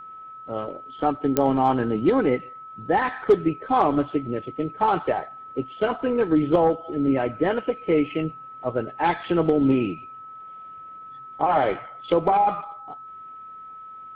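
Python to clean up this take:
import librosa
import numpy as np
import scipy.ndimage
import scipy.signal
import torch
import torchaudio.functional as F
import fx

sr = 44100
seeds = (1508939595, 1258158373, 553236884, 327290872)

y = fx.fix_declip(x, sr, threshold_db=-9.5)
y = fx.fix_declick_ar(y, sr, threshold=10.0)
y = fx.notch(y, sr, hz=1300.0, q=30.0)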